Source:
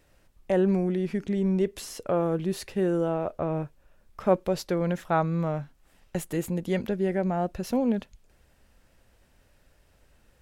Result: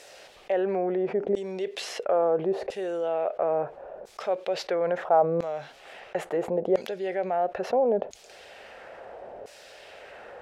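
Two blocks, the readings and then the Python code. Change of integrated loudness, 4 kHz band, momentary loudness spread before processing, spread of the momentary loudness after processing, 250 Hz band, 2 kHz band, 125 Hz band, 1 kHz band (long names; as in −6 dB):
0.0 dB, +3.0 dB, 7 LU, 21 LU, −7.5 dB, +0.5 dB, −12.5 dB, +4.0 dB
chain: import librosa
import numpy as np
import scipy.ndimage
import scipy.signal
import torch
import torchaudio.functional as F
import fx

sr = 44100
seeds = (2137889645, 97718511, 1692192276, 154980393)

y = fx.band_shelf(x, sr, hz=550.0, db=11.5, octaves=1.3)
y = fx.filter_lfo_bandpass(y, sr, shape='saw_down', hz=0.74, low_hz=540.0, high_hz=6800.0, q=1.1)
y = fx.high_shelf(y, sr, hz=4200.0, db=-9.5)
y = fx.env_flatten(y, sr, amount_pct=50)
y = F.gain(torch.from_numpy(y), -3.5).numpy()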